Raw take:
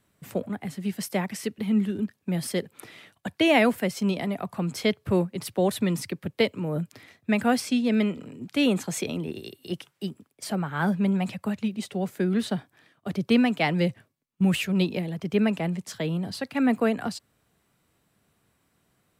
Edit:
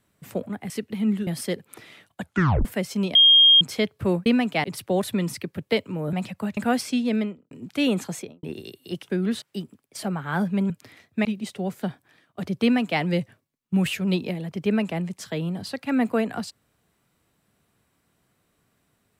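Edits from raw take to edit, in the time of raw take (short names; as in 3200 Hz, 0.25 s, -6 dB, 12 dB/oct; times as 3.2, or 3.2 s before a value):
0.7–1.38 cut
1.95–2.33 cut
3.28 tape stop 0.43 s
4.21–4.67 bleep 3230 Hz -10.5 dBFS
6.81–7.36 swap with 11.17–11.61
7.87–8.3 studio fade out
8.85–9.22 studio fade out
12.18–12.5 move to 9.89
13.31–13.69 copy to 5.32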